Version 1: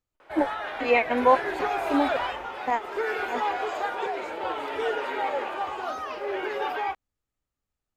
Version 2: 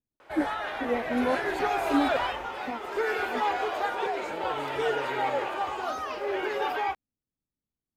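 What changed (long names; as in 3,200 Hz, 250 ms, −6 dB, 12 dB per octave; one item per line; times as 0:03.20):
first voice: add resonant band-pass 230 Hz, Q 1.3
second voice: remove high-pass filter 220 Hz 24 dB per octave
master: add bass and treble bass +3 dB, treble +4 dB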